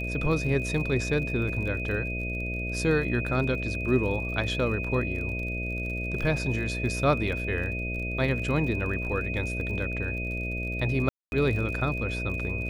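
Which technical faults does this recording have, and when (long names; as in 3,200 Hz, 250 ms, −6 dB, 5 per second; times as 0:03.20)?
mains buzz 60 Hz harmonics 11 −33 dBFS
surface crackle 46 per second −36 dBFS
whistle 2,500 Hz −33 dBFS
0:11.09–0:11.32: drop-out 231 ms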